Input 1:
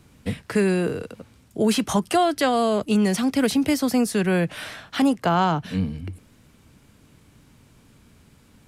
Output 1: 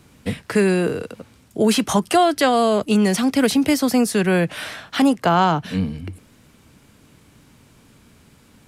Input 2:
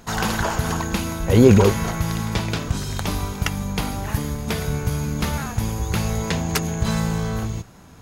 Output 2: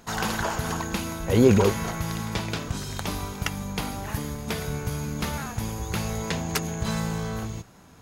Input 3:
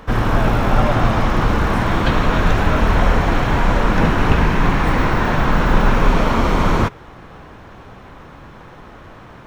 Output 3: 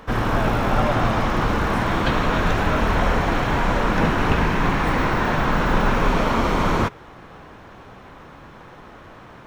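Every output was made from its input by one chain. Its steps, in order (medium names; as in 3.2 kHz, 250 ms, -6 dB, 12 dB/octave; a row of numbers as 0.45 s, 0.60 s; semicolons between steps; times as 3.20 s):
bass shelf 130 Hz -5.5 dB; peak normalisation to -6 dBFS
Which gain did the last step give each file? +4.5 dB, -4.0 dB, -2.0 dB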